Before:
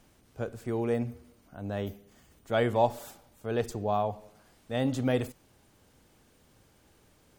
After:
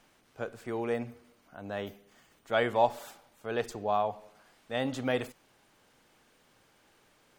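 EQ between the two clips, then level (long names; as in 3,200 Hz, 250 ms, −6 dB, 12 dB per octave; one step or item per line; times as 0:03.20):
tilt shelving filter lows −6 dB, about 650 Hz
parametric band 66 Hz −11.5 dB 1.1 octaves
high-shelf EQ 4,400 Hz −11 dB
0.0 dB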